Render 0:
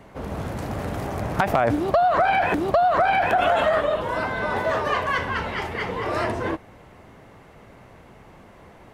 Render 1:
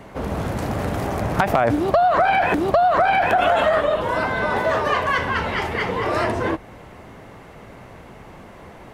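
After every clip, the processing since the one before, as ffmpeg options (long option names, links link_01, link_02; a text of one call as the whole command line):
ffmpeg -i in.wav -filter_complex "[0:a]bandreject=frequency=47.03:width_type=h:width=4,bandreject=frequency=94.06:width_type=h:width=4,bandreject=frequency=141.09:width_type=h:width=4,asplit=2[link_01][link_02];[link_02]acompressor=threshold=-28dB:ratio=6,volume=0.5dB[link_03];[link_01][link_03]amix=inputs=2:normalize=0" out.wav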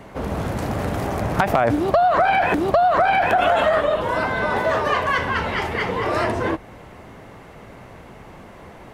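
ffmpeg -i in.wav -af anull out.wav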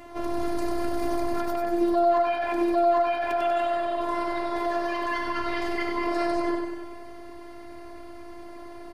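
ffmpeg -i in.wav -af "alimiter=limit=-17dB:level=0:latency=1:release=125,afftfilt=real='hypot(re,im)*cos(PI*b)':imag='0':win_size=512:overlap=0.75,aecho=1:1:96|192|288|384|480|576|672|768|864:0.631|0.379|0.227|0.136|0.0818|0.0491|0.0294|0.0177|0.0106" out.wav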